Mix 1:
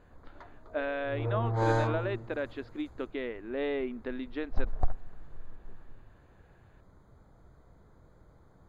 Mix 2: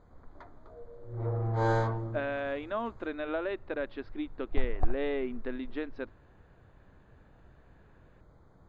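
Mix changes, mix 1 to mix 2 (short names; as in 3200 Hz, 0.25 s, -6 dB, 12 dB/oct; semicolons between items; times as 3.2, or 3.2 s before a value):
speech: entry +1.40 s; master: add air absorption 59 m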